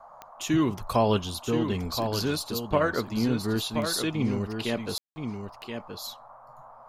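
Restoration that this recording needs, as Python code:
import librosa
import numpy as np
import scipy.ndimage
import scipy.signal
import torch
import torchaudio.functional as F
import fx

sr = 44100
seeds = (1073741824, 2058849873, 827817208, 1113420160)

y = fx.fix_declick_ar(x, sr, threshold=10.0)
y = fx.fix_ambience(y, sr, seeds[0], print_start_s=6.36, print_end_s=6.86, start_s=4.98, end_s=5.16)
y = fx.noise_reduce(y, sr, print_start_s=6.36, print_end_s=6.86, reduce_db=23.0)
y = fx.fix_echo_inverse(y, sr, delay_ms=1026, level_db=-7.0)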